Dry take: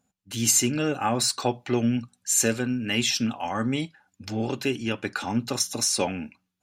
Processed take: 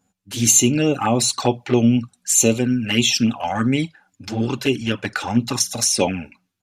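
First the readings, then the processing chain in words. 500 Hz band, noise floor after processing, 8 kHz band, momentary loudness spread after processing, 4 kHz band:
+6.5 dB, -71 dBFS, +6.5 dB, 10 LU, +5.5 dB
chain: envelope flanger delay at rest 10.7 ms, full sweep at -20.5 dBFS; downsampling 32000 Hz; gain +8.5 dB

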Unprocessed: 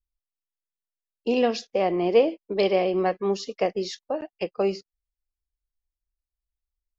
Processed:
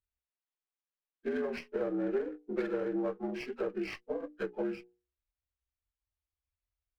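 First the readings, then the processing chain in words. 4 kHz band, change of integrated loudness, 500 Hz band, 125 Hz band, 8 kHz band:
-18.5 dB, -11.0 dB, -11.5 dB, -11.5 dB, n/a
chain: inharmonic rescaling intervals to 77%; LPF 3300 Hz; compressor 6:1, threshold -27 dBFS, peak gain reduction 12.5 dB; notches 60/120/180/240/300/360/420/480 Hz; running maximum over 5 samples; gain -2.5 dB

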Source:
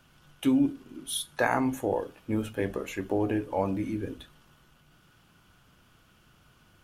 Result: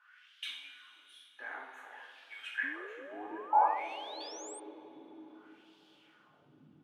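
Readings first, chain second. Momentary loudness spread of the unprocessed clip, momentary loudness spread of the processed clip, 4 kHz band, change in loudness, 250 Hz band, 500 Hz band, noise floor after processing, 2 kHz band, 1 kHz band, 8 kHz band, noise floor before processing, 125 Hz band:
9 LU, 24 LU, -4.0 dB, -6.5 dB, -23.0 dB, -14.0 dB, -65 dBFS, -3.5 dB, +2.0 dB, -10.5 dB, -62 dBFS, under -30 dB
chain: low shelf 86 Hz +10 dB; wah 0.56 Hz 250–3800 Hz, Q 2.9; two-slope reverb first 0.58 s, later 4.6 s, from -18 dB, DRR -4 dB; high-pass sweep 1700 Hz -> 160 Hz, 2.67–6.01; painted sound rise, 2.63–4.6, 260–8900 Hz -49 dBFS

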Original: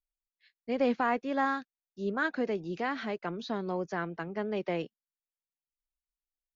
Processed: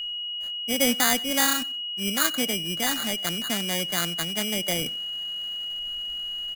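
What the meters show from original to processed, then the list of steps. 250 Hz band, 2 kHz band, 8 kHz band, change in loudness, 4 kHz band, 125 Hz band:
+3.5 dB, +6.5 dB, n/a, +8.0 dB, +26.0 dB, +5.5 dB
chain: sample-and-hold 16×; high shelf 2700 Hz +9 dB; reverse; upward compressor, threshold -30 dBFS; reverse; whine 2900 Hz -34 dBFS; fifteen-band EQ 100 Hz -10 dB, 400 Hz -11 dB, 1000 Hz -10 dB, 4000 Hz -5 dB; on a send: feedback echo 93 ms, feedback 27%, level -23 dB; on the sum: gain +7 dB

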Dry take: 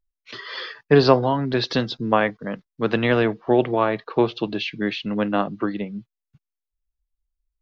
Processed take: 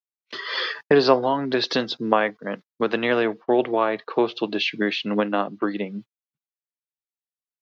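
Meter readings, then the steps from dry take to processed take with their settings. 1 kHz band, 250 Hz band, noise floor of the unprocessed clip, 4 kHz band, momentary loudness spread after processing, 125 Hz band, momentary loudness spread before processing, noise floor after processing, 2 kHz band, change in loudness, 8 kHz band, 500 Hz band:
-0.5 dB, -2.0 dB, under -85 dBFS, +2.0 dB, 12 LU, -10.0 dB, 15 LU, under -85 dBFS, +1.0 dB, -1.0 dB, n/a, -0.5 dB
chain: recorder AGC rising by 12 dB/s; HPF 260 Hz 12 dB/oct; gate -36 dBFS, range -34 dB; gain -1 dB

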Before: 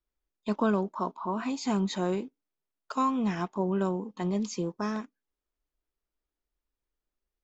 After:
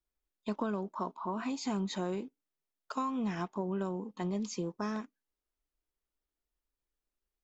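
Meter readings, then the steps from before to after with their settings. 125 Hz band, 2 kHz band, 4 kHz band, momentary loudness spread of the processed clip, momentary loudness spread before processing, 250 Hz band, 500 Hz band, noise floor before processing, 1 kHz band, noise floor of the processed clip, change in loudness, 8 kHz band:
-5.5 dB, -5.5 dB, -4.0 dB, 6 LU, 8 LU, -6.0 dB, -6.0 dB, under -85 dBFS, -6.0 dB, under -85 dBFS, -6.0 dB, n/a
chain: compressor, threshold -27 dBFS, peak gain reduction 7 dB; gain -3 dB

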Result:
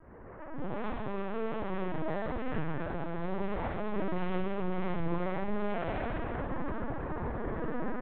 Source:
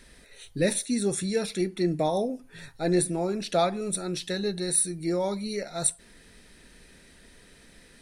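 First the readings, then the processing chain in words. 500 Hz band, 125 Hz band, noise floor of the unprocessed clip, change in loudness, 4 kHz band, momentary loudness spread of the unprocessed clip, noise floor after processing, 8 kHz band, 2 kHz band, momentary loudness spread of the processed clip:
-7.0 dB, -3.0 dB, -55 dBFS, -8.5 dB, -17.0 dB, 8 LU, -47 dBFS, under -40 dB, -2.0 dB, 3 LU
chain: delta modulation 16 kbps, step -36.5 dBFS; LPF 1200 Hz 24 dB/oct; transient shaper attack -8 dB, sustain +11 dB; compressor 2.5:1, threshold -32 dBFS, peak gain reduction 8.5 dB; limiter -35 dBFS, peak gain reduction 12.5 dB; AGC gain up to 15 dB; wavefolder -25 dBFS; chorus 2.1 Hz, delay 15.5 ms, depth 3.6 ms; outdoor echo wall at 93 m, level -17 dB; Schroeder reverb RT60 1.8 s, DRR -4.5 dB; LPC vocoder at 8 kHz pitch kept; gain -7.5 dB

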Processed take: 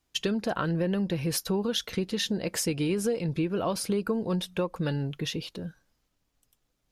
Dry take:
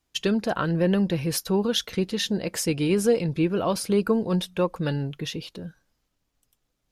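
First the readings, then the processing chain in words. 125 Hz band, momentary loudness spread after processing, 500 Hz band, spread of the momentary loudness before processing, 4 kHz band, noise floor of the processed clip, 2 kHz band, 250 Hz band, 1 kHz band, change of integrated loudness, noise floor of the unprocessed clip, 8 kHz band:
-3.5 dB, 5 LU, -5.5 dB, 9 LU, -2.5 dB, -76 dBFS, -3.5 dB, -4.5 dB, -4.0 dB, -4.5 dB, -76 dBFS, -2.0 dB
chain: compressor 4:1, threshold -25 dBFS, peak gain reduction 9 dB

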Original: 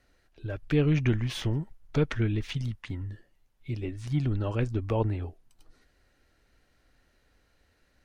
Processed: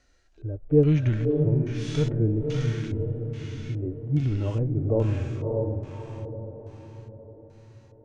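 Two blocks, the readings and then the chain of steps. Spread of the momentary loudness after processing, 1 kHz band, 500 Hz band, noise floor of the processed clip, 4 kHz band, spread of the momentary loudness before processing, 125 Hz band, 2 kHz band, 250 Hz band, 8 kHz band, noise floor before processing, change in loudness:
17 LU, -3.0 dB, +7.0 dB, -55 dBFS, -3.0 dB, 13 LU, +5.0 dB, -4.0 dB, +4.0 dB, n/a, -69 dBFS, +3.5 dB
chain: diffused feedback echo 0.584 s, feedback 50%, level -5 dB; LFO low-pass square 1.2 Hz 550–6700 Hz; harmonic-percussive split percussive -16 dB; gain +4 dB

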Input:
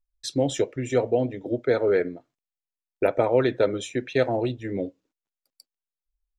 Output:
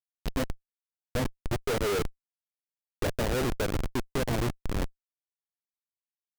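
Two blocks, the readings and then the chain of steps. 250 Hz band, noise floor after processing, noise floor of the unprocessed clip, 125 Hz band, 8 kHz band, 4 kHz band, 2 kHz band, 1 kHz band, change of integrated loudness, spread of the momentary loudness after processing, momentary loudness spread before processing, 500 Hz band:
-6.0 dB, under -85 dBFS, under -85 dBFS, -1.0 dB, n/a, -1.5 dB, -3.0 dB, -4.5 dB, -6.5 dB, 7 LU, 10 LU, -10.0 dB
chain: spectral gain 0.43–1.15, 230–2200 Hz -27 dB; diffused feedback echo 0.494 s, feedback 51%, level -14 dB; Schmitt trigger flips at -23 dBFS

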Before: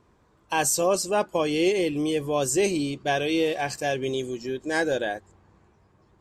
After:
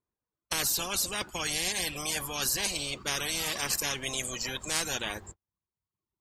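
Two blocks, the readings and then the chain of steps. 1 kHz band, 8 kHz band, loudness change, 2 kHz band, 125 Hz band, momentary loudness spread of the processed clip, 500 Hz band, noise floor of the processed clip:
-9.5 dB, +0.5 dB, -4.5 dB, -3.5 dB, -7.5 dB, 6 LU, -16.5 dB, under -85 dBFS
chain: reverb removal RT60 1.4 s; gate -53 dBFS, range -48 dB; spectral compressor 10:1; gain -3 dB

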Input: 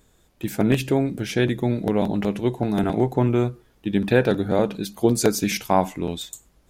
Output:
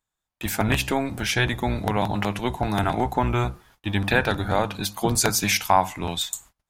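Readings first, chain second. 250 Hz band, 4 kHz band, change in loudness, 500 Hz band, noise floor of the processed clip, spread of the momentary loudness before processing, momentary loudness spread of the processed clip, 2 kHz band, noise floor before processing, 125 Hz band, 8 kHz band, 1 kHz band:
-5.5 dB, +5.5 dB, -1.5 dB, -5.0 dB, -85 dBFS, 9 LU, 8 LU, +5.5 dB, -61 dBFS, -1.5 dB, +5.0 dB, +4.0 dB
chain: octaver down 1 oct, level -1 dB; gate -51 dBFS, range -29 dB; resonant low shelf 630 Hz -10 dB, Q 1.5; compressor 1.5:1, threshold -30 dBFS, peak gain reduction 6 dB; gain +7.5 dB

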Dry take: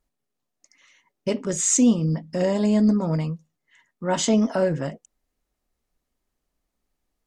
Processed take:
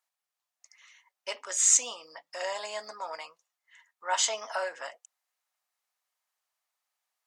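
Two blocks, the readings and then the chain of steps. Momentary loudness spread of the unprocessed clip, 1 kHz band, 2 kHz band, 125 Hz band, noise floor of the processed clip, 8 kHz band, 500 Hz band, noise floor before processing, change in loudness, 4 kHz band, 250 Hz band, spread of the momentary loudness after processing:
14 LU, -2.0 dB, 0.0 dB, under -40 dB, under -85 dBFS, 0.0 dB, -12.5 dB, -80 dBFS, -6.0 dB, 0.0 dB, under -40 dB, 22 LU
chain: HPF 790 Hz 24 dB/oct

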